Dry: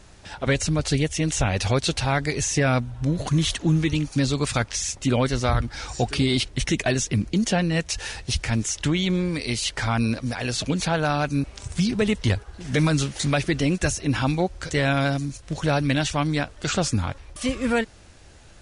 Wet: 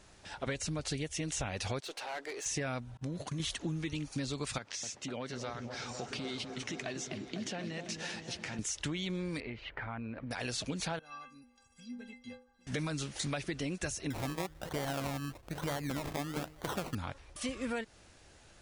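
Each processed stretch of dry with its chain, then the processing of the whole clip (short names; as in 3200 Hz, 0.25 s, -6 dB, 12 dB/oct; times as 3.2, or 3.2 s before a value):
1.8–2.46 HPF 370 Hz 24 dB/oct + high shelf 2600 Hz -8 dB + tube stage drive 28 dB, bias 0.2
2.97–3.4 expander -25 dBFS + HPF 71 Hz + compressor, threshold -22 dBFS
4.58–8.59 compressor 5:1, threshold -27 dBFS + BPF 140–6900 Hz + repeats that get brighter 0.25 s, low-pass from 750 Hz, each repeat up 1 oct, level -6 dB
9.4–10.31 LPF 2300 Hz 24 dB/oct + notch 1100 Hz, Q 27 + compressor, threshold -28 dBFS
10.99–12.67 high shelf 5200 Hz -6.5 dB + metallic resonator 240 Hz, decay 0.48 s, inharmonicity 0.03
14.1–16.95 LPF 5900 Hz 24 dB/oct + de-hum 154.3 Hz, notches 3 + decimation with a swept rate 24×, swing 60% 1.1 Hz
whole clip: low shelf 150 Hz -7 dB; compressor, threshold -26 dBFS; gain -7 dB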